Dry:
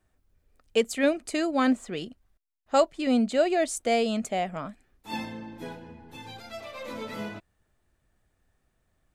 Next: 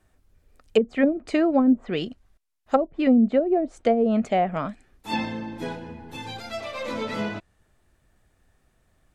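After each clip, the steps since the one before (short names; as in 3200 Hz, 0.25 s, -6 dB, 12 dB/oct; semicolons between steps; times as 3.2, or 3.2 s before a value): treble ducked by the level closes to 310 Hz, closed at -19 dBFS; gain +7 dB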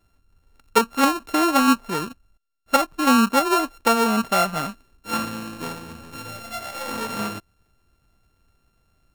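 sample sorter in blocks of 32 samples; dynamic EQ 1100 Hz, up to +5 dB, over -35 dBFS, Q 1.6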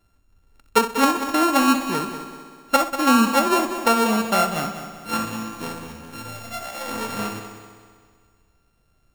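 multi-head echo 64 ms, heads first and third, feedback 61%, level -11.5 dB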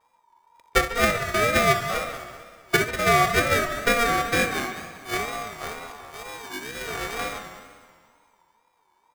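speakerphone echo 0.14 s, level -11 dB; vibrato 2.1 Hz 96 cents; ring modulator 940 Hz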